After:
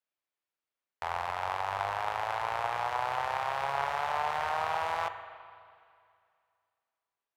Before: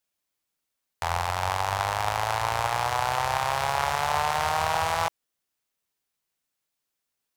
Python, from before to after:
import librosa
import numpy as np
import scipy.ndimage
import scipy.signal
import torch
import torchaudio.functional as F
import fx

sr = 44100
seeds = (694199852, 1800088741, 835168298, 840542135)

y = fx.bass_treble(x, sr, bass_db=-10, treble_db=-13)
y = fx.comb_fb(y, sr, f0_hz=140.0, decay_s=0.8, harmonics='odd', damping=0.0, mix_pct=50)
y = fx.rev_spring(y, sr, rt60_s=2.3, pass_ms=(40, 51), chirp_ms=25, drr_db=9.5)